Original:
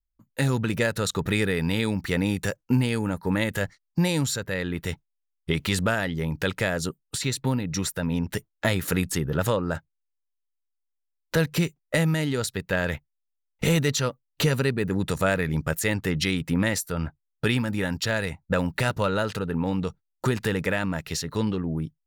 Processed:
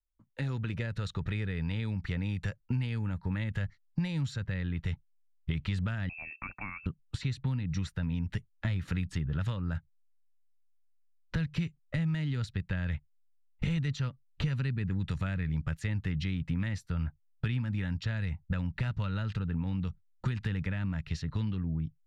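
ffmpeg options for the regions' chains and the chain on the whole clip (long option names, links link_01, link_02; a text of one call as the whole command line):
ffmpeg -i in.wav -filter_complex "[0:a]asettb=1/sr,asplit=3[link_01][link_02][link_03];[link_01]atrim=end=6.094[link_04];[link_02]atrim=start=6.09:end=6.86,asetpts=PTS-STARTPTS,afade=type=in:duration=0.004:curve=qsin,afade=type=out:start_time=0.766:duration=0.004:curve=qsin,highpass=frequency=310:poles=1,lowpass=frequency=2400:width_type=q:width=0.5098,lowpass=frequency=2400:width_type=q:width=0.6013,lowpass=frequency=2400:width_type=q:width=0.9,lowpass=frequency=2400:width_type=q:width=2.563,afreqshift=-2800[link_05];[link_03]atrim=start=6.856[link_06];[link_04][link_05]acrossfade=duration=0.004:curve1=hsin:curve2=qsin[link_07];[link_07][link_06]acrossfade=duration=0.004:curve1=qsin:curve2=hsin,lowpass=3300,asubboost=boost=10.5:cutoff=130,acrossover=split=290|1600[link_08][link_09][link_10];[link_08]acompressor=threshold=-25dB:ratio=4[link_11];[link_09]acompressor=threshold=-39dB:ratio=4[link_12];[link_10]acompressor=threshold=-35dB:ratio=4[link_13];[link_11][link_12][link_13]amix=inputs=3:normalize=0,volume=-6.5dB" out.wav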